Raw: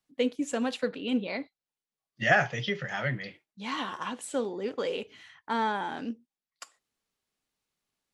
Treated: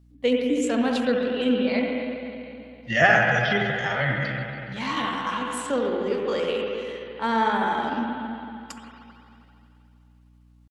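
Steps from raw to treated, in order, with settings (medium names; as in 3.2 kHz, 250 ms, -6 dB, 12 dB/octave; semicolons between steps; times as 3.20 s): spring tank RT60 2.1 s, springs 48/58 ms, chirp 60 ms, DRR -0.5 dB; tempo 0.76×; hum 60 Hz, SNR 29 dB; trim +4 dB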